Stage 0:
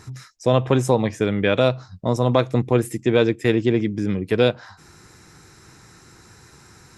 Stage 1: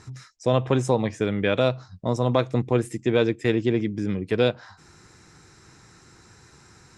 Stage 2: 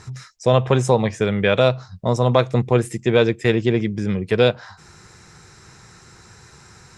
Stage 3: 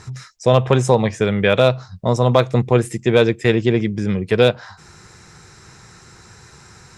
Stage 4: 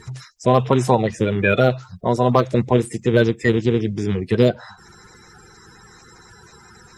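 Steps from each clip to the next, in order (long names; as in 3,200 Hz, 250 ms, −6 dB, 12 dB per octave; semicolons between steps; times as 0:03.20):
low-pass filter 9,400 Hz 24 dB per octave; level −3.5 dB
parametric band 290 Hz −11 dB 0.33 octaves; level +6 dB
hard clipping −3.5 dBFS, distortion −34 dB; level +2 dB
spectral magnitudes quantised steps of 30 dB; level −1 dB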